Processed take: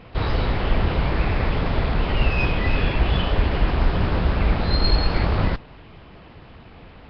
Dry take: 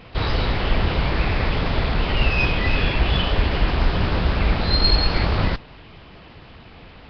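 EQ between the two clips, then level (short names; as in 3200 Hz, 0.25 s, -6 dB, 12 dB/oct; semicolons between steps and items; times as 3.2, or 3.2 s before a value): high shelf 2800 Hz -9 dB; 0.0 dB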